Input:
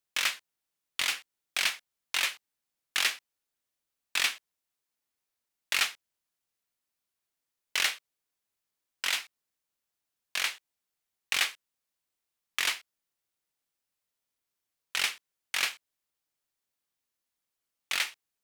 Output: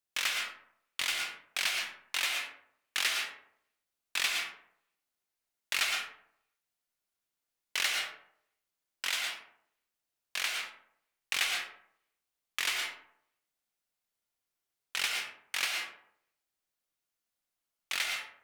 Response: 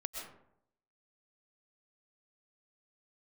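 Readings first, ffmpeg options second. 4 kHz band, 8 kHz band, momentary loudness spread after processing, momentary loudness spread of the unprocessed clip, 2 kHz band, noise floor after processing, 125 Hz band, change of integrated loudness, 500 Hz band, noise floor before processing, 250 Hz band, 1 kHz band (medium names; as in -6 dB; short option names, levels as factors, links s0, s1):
-1.5 dB, -2.0 dB, 11 LU, 16 LU, -1.5 dB, under -85 dBFS, no reading, -2.5 dB, -0.5 dB, under -85 dBFS, -1.0 dB, -1.0 dB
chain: -filter_complex "[1:a]atrim=start_sample=2205,asetrate=48510,aresample=44100[s0];[0:a][s0]afir=irnorm=-1:irlink=0"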